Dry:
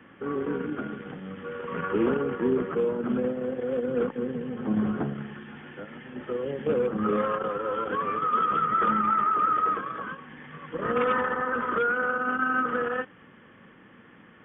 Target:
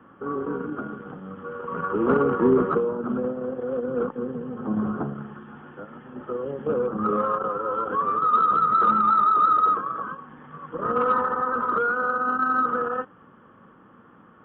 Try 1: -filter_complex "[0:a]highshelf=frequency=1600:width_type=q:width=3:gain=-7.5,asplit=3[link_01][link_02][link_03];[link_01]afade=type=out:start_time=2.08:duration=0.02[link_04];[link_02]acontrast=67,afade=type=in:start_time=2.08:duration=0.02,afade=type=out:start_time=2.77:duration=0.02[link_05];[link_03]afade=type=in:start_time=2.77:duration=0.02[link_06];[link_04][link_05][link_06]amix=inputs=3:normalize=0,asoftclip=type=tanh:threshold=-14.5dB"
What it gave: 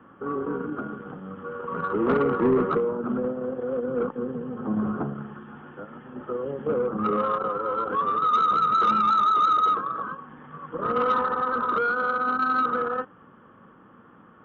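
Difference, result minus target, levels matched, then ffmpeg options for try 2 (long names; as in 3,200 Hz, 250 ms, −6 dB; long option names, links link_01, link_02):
soft clipping: distortion +14 dB
-filter_complex "[0:a]highshelf=frequency=1600:width_type=q:width=3:gain=-7.5,asplit=3[link_01][link_02][link_03];[link_01]afade=type=out:start_time=2.08:duration=0.02[link_04];[link_02]acontrast=67,afade=type=in:start_time=2.08:duration=0.02,afade=type=out:start_time=2.77:duration=0.02[link_05];[link_03]afade=type=in:start_time=2.77:duration=0.02[link_06];[link_04][link_05][link_06]amix=inputs=3:normalize=0,asoftclip=type=tanh:threshold=-6dB"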